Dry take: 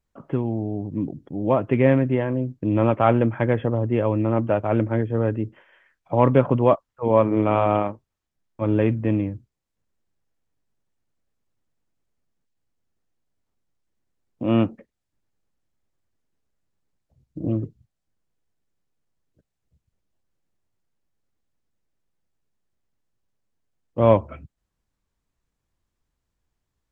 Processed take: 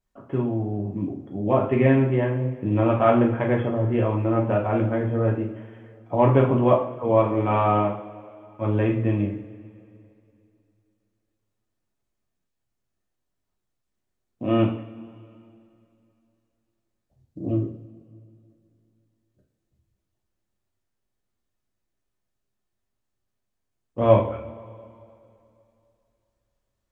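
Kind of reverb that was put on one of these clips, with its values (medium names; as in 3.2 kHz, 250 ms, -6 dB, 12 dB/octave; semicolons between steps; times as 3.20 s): two-slope reverb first 0.45 s, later 2.7 s, from -20 dB, DRR -1.5 dB; trim -4 dB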